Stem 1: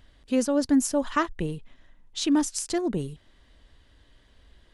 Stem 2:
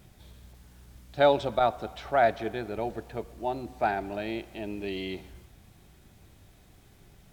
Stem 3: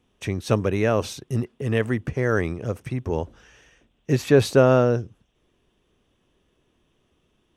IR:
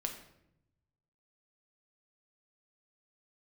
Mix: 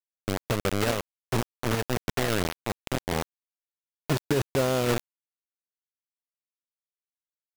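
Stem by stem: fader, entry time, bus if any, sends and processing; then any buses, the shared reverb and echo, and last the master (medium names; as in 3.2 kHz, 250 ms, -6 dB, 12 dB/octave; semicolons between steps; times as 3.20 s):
-8.0 dB, 0.55 s, bus A, send -9.5 dB, compression 3:1, threshold -26 dBFS, peak gain reduction 7.5 dB
-8.5 dB, 0.00 s, bus A, send -6 dB, bass shelf 240 Hz +7.5 dB; compression 2.5:1, threshold -25 dBFS, peak gain reduction 7 dB
-3.5 dB, 0.00 s, no bus, send -23.5 dB, treble shelf 4 kHz +11 dB
bus A: 0.0 dB, bass shelf 120 Hz -11.5 dB; peak limiter -29.5 dBFS, peak gain reduction 9.5 dB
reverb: on, RT60 0.80 s, pre-delay 6 ms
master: tape spacing loss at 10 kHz 26 dB; bit crusher 4-bit; peak limiter -16.5 dBFS, peak gain reduction 9 dB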